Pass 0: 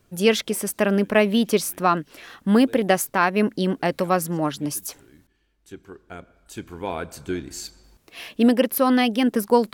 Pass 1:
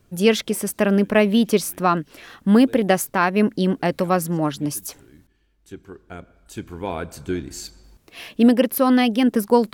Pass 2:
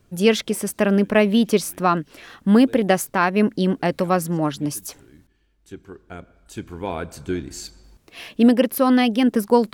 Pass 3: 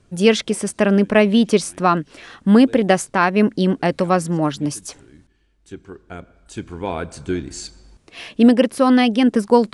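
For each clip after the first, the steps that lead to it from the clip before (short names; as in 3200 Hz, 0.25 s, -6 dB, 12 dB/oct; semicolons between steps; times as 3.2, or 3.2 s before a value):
low shelf 280 Hz +5 dB
bell 14000 Hz -4 dB 0.55 oct
downsampling 22050 Hz; gain +2.5 dB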